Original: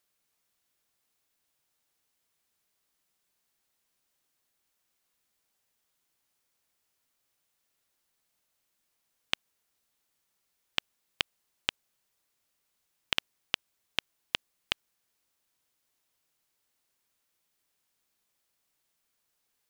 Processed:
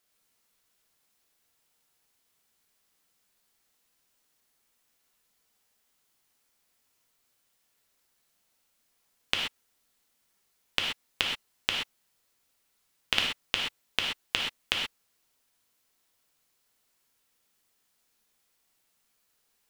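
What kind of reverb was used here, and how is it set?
non-linear reverb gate 0.15 s flat, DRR -1 dB; gain +1.5 dB

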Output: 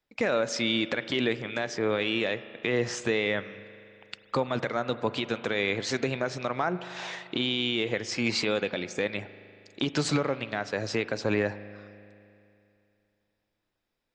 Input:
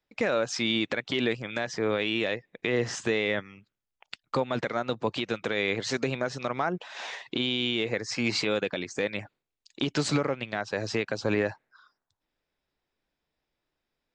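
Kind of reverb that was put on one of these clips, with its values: spring tank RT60 2.7 s, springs 39 ms, chirp 70 ms, DRR 13.5 dB

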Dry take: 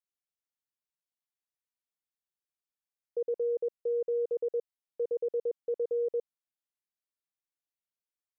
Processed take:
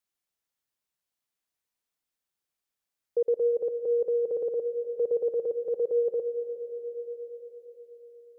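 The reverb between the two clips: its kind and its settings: digital reverb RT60 4.9 s, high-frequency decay 0.65×, pre-delay 80 ms, DRR 11 dB; gain +6.5 dB

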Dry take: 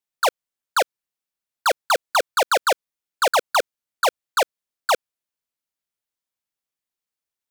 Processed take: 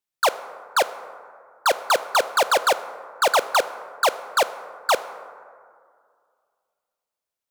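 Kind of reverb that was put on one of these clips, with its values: plate-style reverb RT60 2.2 s, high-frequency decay 0.35×, DRR 12.5 dB

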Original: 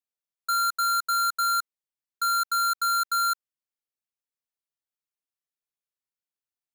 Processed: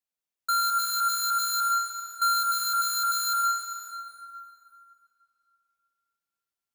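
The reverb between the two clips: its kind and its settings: plate-style reverb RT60 2.8 s, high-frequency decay 0.7×, pre-delay 0.11 s, DRR 0.5 dB

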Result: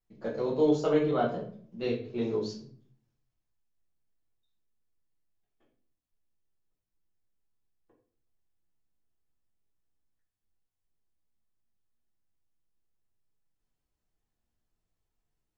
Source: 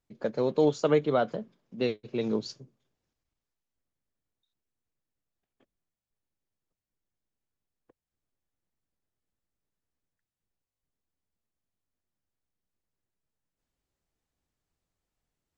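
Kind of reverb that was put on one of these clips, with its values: shoebox room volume 49 m³, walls mixed, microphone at 1.2 m; gain -9 dB

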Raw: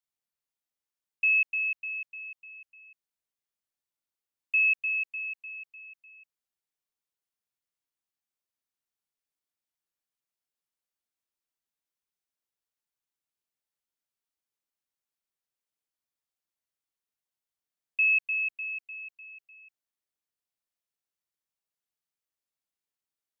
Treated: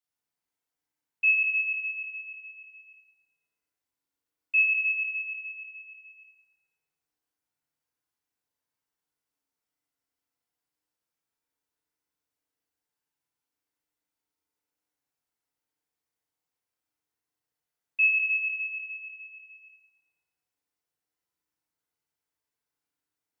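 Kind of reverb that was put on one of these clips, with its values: FDN reverb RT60 2.4 s, low-frequency decay 0.95×, high-frequency decay 0.3×, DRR -9 dB; gain -4.5 dB

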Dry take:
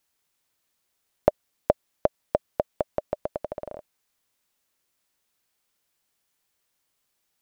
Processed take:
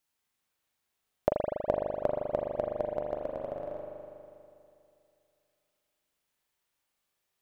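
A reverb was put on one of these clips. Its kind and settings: spring tank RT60 2.6 s, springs 40 ms, chirp 25 ms, DRR -1.5 dB; gain -7 dB

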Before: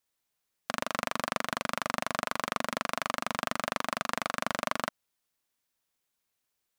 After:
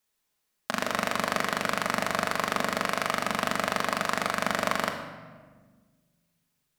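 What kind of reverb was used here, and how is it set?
shoebox room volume 1300 m³, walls mixed, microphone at 1.4 m; gain +2.5 dB

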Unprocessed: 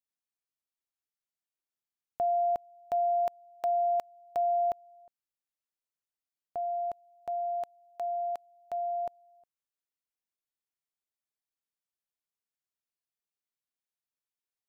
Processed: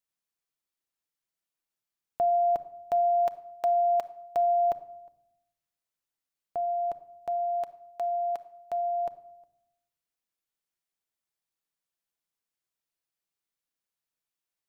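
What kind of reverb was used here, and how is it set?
shoebox room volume 2300 m³, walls furnished, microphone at 0.7 m; gain +3 dB

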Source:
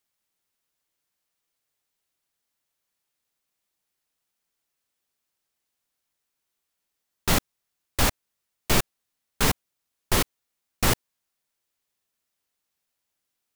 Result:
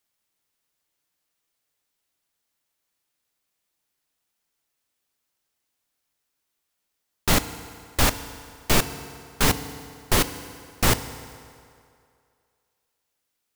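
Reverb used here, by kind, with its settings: FDN reverb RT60 2.4 s, low-frequency decay 0.8×, high-frequency decay 0.75×, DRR 11 dB; gain +2 dB

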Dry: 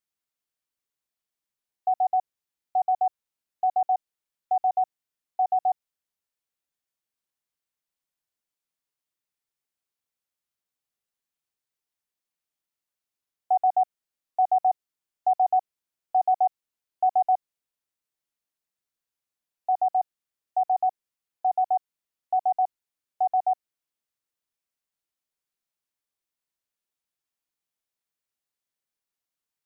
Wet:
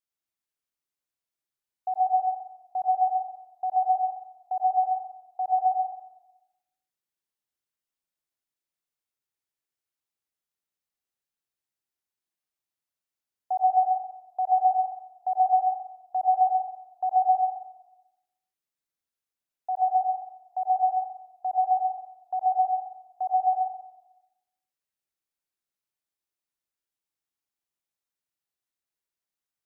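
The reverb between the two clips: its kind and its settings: plate-style reverb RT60 0.94 s, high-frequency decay 0.85×, pre-delay 80 ms, DRR 0.5 dB; gain -5.5 dB

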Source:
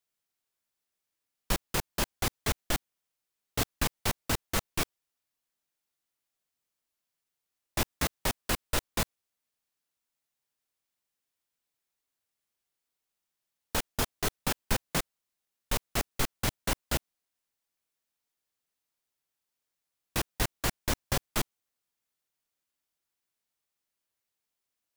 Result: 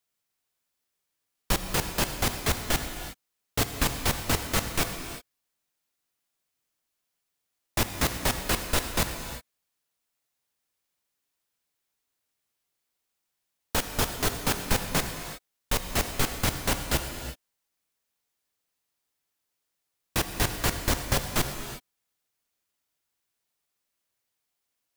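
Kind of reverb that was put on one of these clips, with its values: non-linear reverb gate 0.39 s flat, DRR 6 dB; gain +3.5 dB

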